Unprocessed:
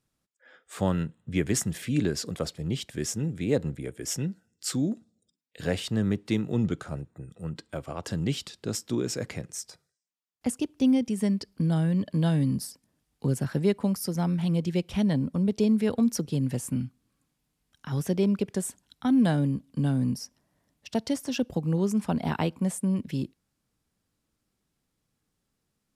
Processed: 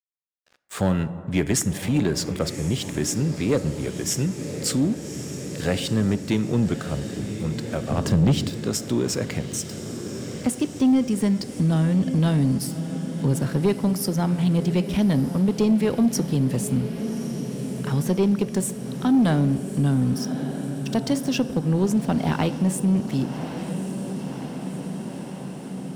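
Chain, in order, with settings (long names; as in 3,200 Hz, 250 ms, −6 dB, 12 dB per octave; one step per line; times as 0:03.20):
dead-zone distortion −49 dBFS
on a send: feedback delay with all-pass diffusion 1,154 ms, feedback 67%, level −13.5 dB
on the sum: dense smooth reverb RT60 1.6 s, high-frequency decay 0.45×, DRR 14.5 dB
in parallel at −1 dB: downward compressor, threshold −37 dBFS, peak gain reduction 17.5 dB
0:07.91–0:08.50: on the sum: low-shelf EQ 440 Hz +9.5 dB
soft clipping −17.5 dBFS, distortion −16 dB
level +5 dB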